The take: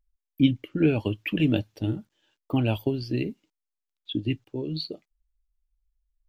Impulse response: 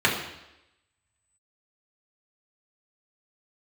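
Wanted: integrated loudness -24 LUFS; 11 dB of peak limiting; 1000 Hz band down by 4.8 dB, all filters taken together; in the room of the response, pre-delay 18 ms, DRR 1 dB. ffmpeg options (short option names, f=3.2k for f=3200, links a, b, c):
-filter_complex "[0:a]equalizer=f=1k:t=o:g=-7,alimiter=limit=-19.5dB:level=0:latency=1,asplit=2[a][b];[1:a]atrim=start_sample=2205,adelay=18[c];[b][c]afir=irnorm=-1:irlink=0,volume=-18.5dB[d];[a][d]amix=inputs=2:normalize=0,volume=5dB"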